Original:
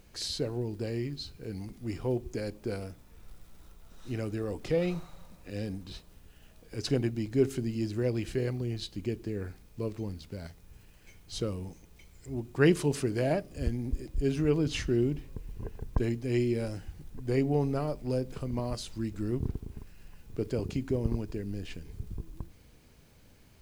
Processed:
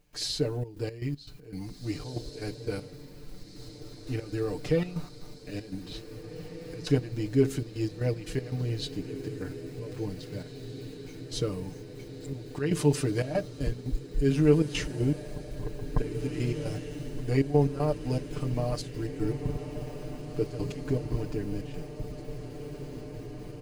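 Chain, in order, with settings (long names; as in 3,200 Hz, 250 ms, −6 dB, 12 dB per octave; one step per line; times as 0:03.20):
comb filter 6.7 ms, depth 97%
gate pattern ".xxxx.x.x.x" 118 BPM −12 dB
feedback delay with all-pass diffusion 1,954 ms, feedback 72%, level −12 dB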